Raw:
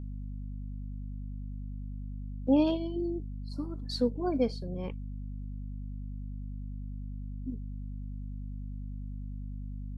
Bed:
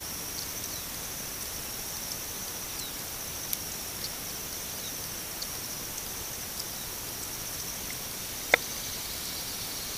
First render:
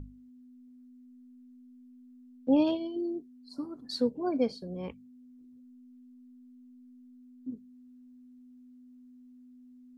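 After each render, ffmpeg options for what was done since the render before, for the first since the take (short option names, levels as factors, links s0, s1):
-af "bandreject=f=50:t=h:w=6,bandreject=f=100:t=h:w=6,bandreject=f=150:t=h:w=6,bandreject=f=200:t=h:w=6"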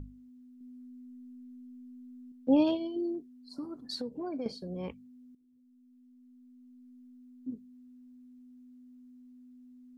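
-filter_complex "[0:a]asettb=1/sr,asplit=3[s0][s1][s2];[s0]atrim=end=0.594[s3];[s1]atrim=start=0.59:end=2.32,asetpts=PTS-STARTPTS,afade=t=in:d=0.004:c=qsin,afade=t=out:st=1.726:d=0.004:c=qsin,asplit=2[s4][s5];[s5]adelay=16,volume=0.794[s6];[s4][s6]amix=inputs=2:normalize=0,atrim=end_sample=76293[s7];[s2]atrim=start=2.316[s8];[s3][s7]acrossfade=d=0.004:c1=hsin:c2=qsin[s9];[s9][s8]acrossfade=d=0.004:c1=qsin:c2=hsin,asettb=1/sr,asplit=3[s10][s11][s12];[s10]atrim=end=3.144[s13];[s11]atrim=start=3.14:end=4.46,asetpts=PTS-STARTPTS,afade=t=in:d=0.004:c=qsin,afade=t=out:st=1.316:d=0.004:c=qsin,acompressor=threshold=0.0224:ratio=6:attack=3.2:release=140:knee=1:detection=peak[s14];[s12]atrim=start=4.456[s15];[s13][s14]acrossfade=d=0.004:c1=hsin:c2=qsin[s16];[s16][s15]acrossfade=d=0.004:c1=qsin:c2=hsin,asplit=2[s17][s18];[s17]atrim=end=5.35,asetpts=PTS-STARTPTS,afade=t=out:st=5.346:d=0.004:c=hsin:silence=0.188365[s19];[s18]atrim=start=5.35,asetpts=PTS-STARTPTS,afade=t=in:d=1.63:silence=0.188365[s20];[s19][s20]concat=n=2:v=0:a=1"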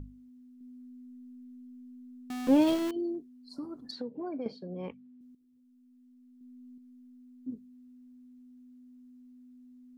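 -filter_complex "[0:a]asettb=1/sr,asplit=3[s0][s1][s2];[s0]atrim=end=2.304[s3];[s1]atrim=start=2.3:end=2.91,asetpts=PTS-STARTPTS,afade=t=in:d=0.004:c=qsin,afade=t=out:st=0.606:d=0.004:c=qsin,aeval=exprs='val(0)+0.5*0.0282*sgn(val(0))':c=same[s4];[s2]atrim=start=2.906[s5];[s3][s4]acrossfade=d=0.004:c1=hsin:c2=qsin[s6];[s6][s5]acrossfade=d=0.004:c1=qsin:c2=hsin,asettb=1/sr,asplit=3[s7][s8][s9];[s7]atrim=end=3.914[s10];[s8]atrim=start=3.91:end=5.21,asetpts=PTS-STARTPTS,afade=t=in:d=0.004:c=qsin,afade=t=out:st=1.296:d=0.004:c=qsin,highpass=150,lowpass=3100[s11];[s9]atrim=start=5.206[s12];[s10][s11]acrossfade=d=0.004:c1=hsin:c2=qsin[s13];[s13][s12]acrossfade=d=0.004:c1=qsin:c2=hsin,asettb=1/sr,asplit=3[s14][s15][s16];[s14]atrim=end=6.384[s17];[s15]atrim=start=6.38:end=6.78,asetpts=PTS-STARTPTS,afade=t=in:d=0.004:c=qsin,afade=t=out:st=0.396:d=0.004:c=qsin,asplit=2[s18][s19];[s19]adelay=28,volume=0.794[s20];[s18][s20]amix=inputs=2:normalize=0,atrim=end_sample=17640[s21];[s16]atrim=start=6.776[s22];[s17][s21]acrossfade=d=0.004:c1=hsin:c2=qsin[s23];[s23][s22]acrossfade=d=0.004:c1=qsin:c2=hsin"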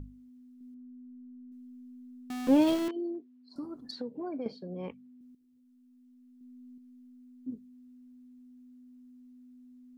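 -filter_complex "[0:a]asettb=1/sr,asplit=3[s0][s1][s2];[s0]atrim=end=0.744[s3];[s1]atrim=start=0.74:end=1.52,asetpts=PTS-STARTPTS,afade=t=in:d=0.004:c=qsin,afade=t=out:st=0.776:d=0.004:c=qsin,lowpass=1300[s4];[s2]atrim=start=1.516[s5];[s3][s4]acrossfade=d=0.004:c1=hsin:c2=qsin[s6];[s6][s5]acrossfade=d=0.004:c1=qsin:c2=hsin,asettb=1/sr,asplit=3[s7][s8][s9];[s7]atrim=end=2.884[s10];[s8]atrim=start=2.88:end=3.56,asetpts=PTS-STARTPTS,afade=t=in:d=0.004:c=qsin,afade=t=out:st=0.676:d=0.004:c=qsin,highpass=290,lowpass=3100[s11];[s9]atrim=start=3.556[s12];[s10][s11]acrossfade=d=0.004:c1=hsin:c2=qsin[s13];[s13][s12]acrossfade=d=0.004:c1=qsin:c2=hsin"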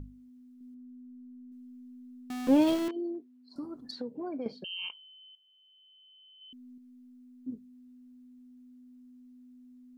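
-filter_complex "[0:a]asettb=1/sr,asplit=3[s0][s1][s2];[s0]atrim=end=4.644[s3];[s1]atrim=start=4.64:end=6.53,asetpts=PTS-STARTPTS,afade=t=in:d=0.004:c=qsin,afade=t=out:st=1.886:d=0.004:c=qsin,lowpass=f=2800:t=q:w=0.5098,lowpass=f=2800:t=q:w=0.6013,lowpass=f=2800:t=q:w=0.9,lowpass=f=2800:t=q:w=2.563,afreqshift=-3300[s4];[s2]atrim=start=6.526[s5];[s3][s4]acrossfade=d=0.004:c1=hsin:c2=qsin[s6];[s6][s5]acrossfade=d=0.004:c1=qsin:c2=hsin"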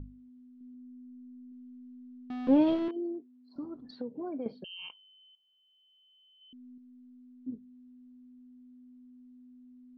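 -af "lowpass=f=3600:w=0.5412,lowpass=f=3600:w=1.3066,equalizer=f=2300:t=o:w=1.9:g=-6"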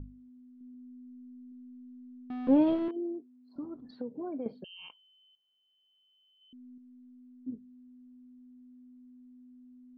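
-af "aemphasis=mode=reproduction:type=75kf"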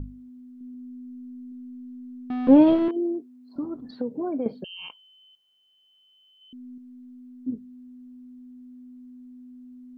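-af "volume=2.82"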